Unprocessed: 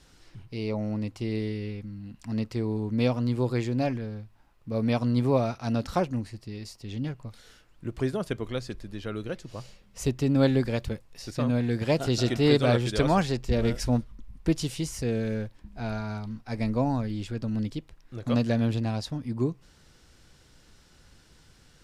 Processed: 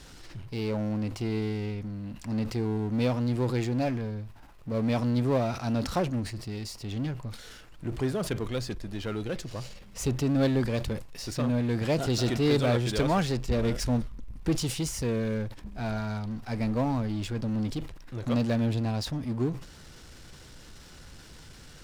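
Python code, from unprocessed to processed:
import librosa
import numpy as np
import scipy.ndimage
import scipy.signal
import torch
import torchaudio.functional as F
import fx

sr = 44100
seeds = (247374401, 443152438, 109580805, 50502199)

y = fx.power_curve(x, sr, exponent=0.7)
y = fx.sustainer(y, sr, db_per_s=110.0)
y = y * 10.0 ** (-5.5 / 20.0)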